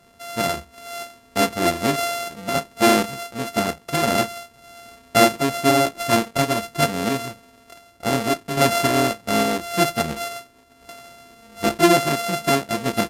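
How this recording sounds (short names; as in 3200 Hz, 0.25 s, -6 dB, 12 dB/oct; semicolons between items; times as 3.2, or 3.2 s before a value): a buzz of ramps at a fixed pitch in blocks of 64 samples; random-step tremolo; AAC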